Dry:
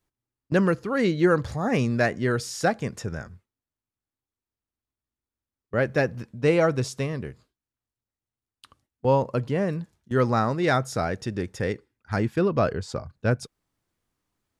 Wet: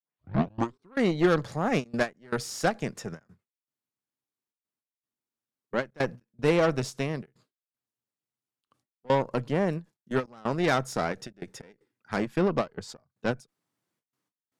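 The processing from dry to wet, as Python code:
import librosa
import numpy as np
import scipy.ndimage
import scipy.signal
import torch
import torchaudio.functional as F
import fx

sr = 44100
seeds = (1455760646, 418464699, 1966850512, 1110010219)

y = fx.tape_start_head(x, sr, length_s=0.96)
y = scipy.signal.sosfilt(scipy.signal.butter(4, 130.0, 'highpass', fs=sr, output='sos'), y)
y = fx.cheby_harmonics(y, sr, harmonics=(8,), levels_db=(-21,), full_scale_db=-7.5)
y = fx.step_gate(y, sr, bpm=155, pattern='xxxxx.xx..xxxx', floor_db=-24.0, edge_ms=4.5)
y = fx.end_taper(y, sr, db_per_s=360.0)
y = F.gain(torch.from_numpy(y), -2.5).numpy()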